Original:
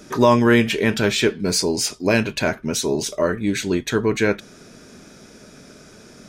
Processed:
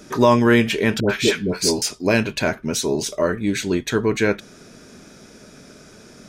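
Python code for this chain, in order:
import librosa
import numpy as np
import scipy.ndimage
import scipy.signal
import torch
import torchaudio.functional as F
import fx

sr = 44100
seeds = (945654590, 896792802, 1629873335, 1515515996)

y = fx.dispersion(x, sr, late='highs', ms=97.0, hz=840.0, at=(1.0, 1.82))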